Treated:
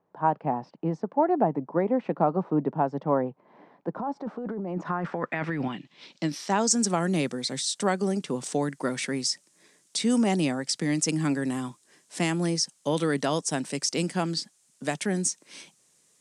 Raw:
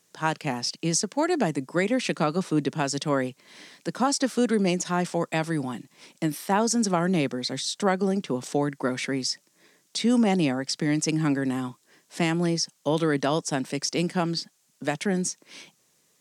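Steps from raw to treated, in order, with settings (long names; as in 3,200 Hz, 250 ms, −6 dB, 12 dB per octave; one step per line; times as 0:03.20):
0:03.97–0:05.68: compressor whose output falls as the input rises −29 dBFS, ratio −1
low-pass filter sweep 860 Hz → 9,300 Hz, 0:04.60–0:06.88
level −2 dB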